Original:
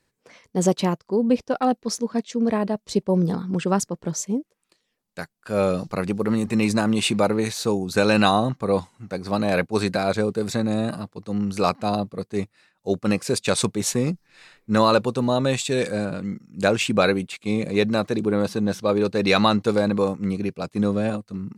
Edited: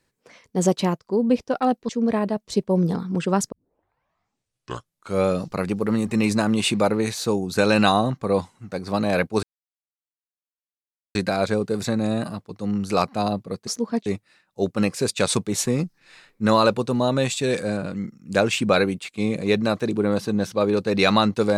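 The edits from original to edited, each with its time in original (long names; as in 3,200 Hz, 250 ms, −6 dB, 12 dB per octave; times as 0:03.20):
0:01.89–0:02.28: move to 0:12.34
0:03.91: tape start 1.75 s
0:09.82: splice in silence 1.72 s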